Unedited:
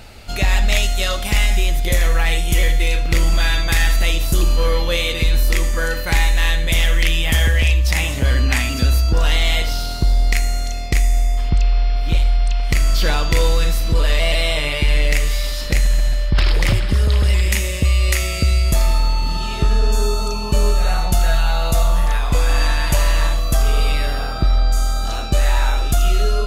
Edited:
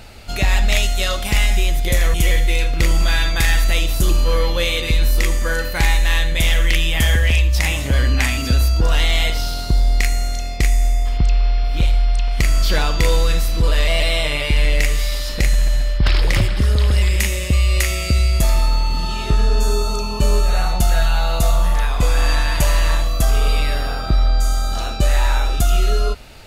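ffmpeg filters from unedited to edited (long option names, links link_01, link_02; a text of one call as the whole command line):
ffmpeg -i in.wav -filter_complex "[0:a]asplit=2[link_01][link_02];[link_01]atrim=end=2.142[link_03];[link_02]atrim=start=2.458[link_04];[link_03][link_04]acrossfade=duration=0.004:curve1=hsin:curve2=hsin" out.wav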